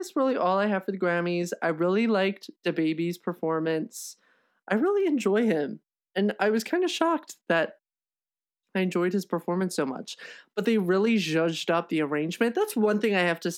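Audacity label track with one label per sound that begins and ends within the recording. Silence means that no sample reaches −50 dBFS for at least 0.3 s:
4.680000	5.770000	sound
6.160000	7.740000	sound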